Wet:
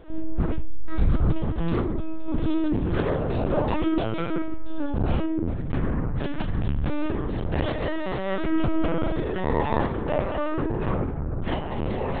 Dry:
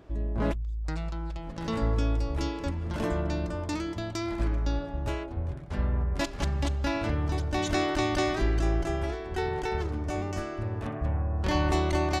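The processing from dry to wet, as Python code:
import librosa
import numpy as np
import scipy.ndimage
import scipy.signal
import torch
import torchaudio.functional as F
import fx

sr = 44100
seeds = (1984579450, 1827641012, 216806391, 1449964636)

y = fx.low_shelf(x, sr, hz=140.0, db=-10.5, at=(8.24, 10.49))
y = fx.hum_notches(y, sr, base_hz=60, count=5)
y = fx.over_compress(y, sr, threshold_db=-32.0, ratio=-1.0)
y = fx.low_shelf(y, sr, hz=390.0, db=2.5)
y = fx.room_shoebox(y, sr, seeds[0], volume_m3=410.0, walls='furnished', distance_m=2.6)
y = fx.lpc_vocoder(y, sr, seeds[1], excitation='pitch_kept', order=10)
y = fx.doppler_dist(y, sr, depth_ms=0.27)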